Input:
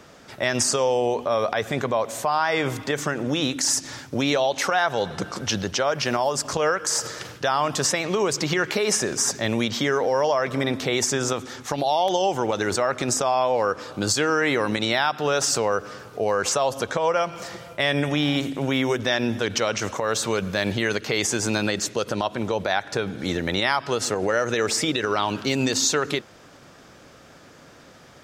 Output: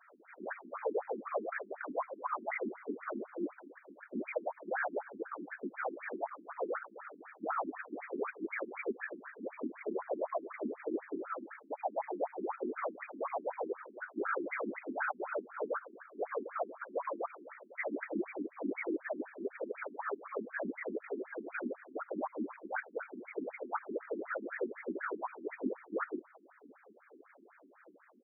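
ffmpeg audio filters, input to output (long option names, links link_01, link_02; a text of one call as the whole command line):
ffmpeg -i in.wav -filter_complex "[0:a]asettb=1/sr,asplit=3[link_01][link_02][link_03];[link_01]atrim=end=1.994[link_04];[link_02]atrim=start=1.99:end=2.51,asetpts=PTS-STARTPTS,afade=type=in:duration=0.004:curve=qsin,afade=type=out:start_time=0.516:duration=0.004:curve=qsin,aecho=1:1:5.9:0.76,atrim=end_sample=22932[link_05];[link_03]atrim=start=2.506[link_06];[link_04][link_05]acrossfade=duration=0.004:curve1=hsin:curve2=qsin[link_07];[link_07][link_06]acrossfade=duration=0.004:curve1=qsin:curve2=hsin,afftfilt=real='hypot(re,im)*cos(2*PI*random(0))':imag='hypot(re,im)*sin(2*PI*random(1))':win_size=512:overlap=0.75,asoftclip=type=tanh:threshold=-22.5dB,asplit=2[link_08][link_09];[link_09]adelay=1172,lowpass=frequency=970:poles=1,volume=-22.5dB,asplit=2[link_10][link_11];[link_11]adelay=1172,lowpass=frequency=970:poles=1,volume=0.32[link_12];[link_08][link_10][link_12]amix=inputs=3:normalize=0,afftfilt=real='re*between(b*sr/1024,260*pow(1800/260,0.5+0.5*sin(2*PI*4*pts/sr))/1.41,260*pow(1800/260,0.5+0.5*sin(2*PI*4*pts/sr))*1.41)':imag='im*between(b*sr/1024,260*pow(1800/260,0.5+0.5*sin(2*PI*4*pts/sr))/1.41,260*pow(1800/260,0.5+0.5*sin(2*PI*4*pts/sr))*1.41)':win_size=1024:overlap=0.75,volume=-1dB" out.wav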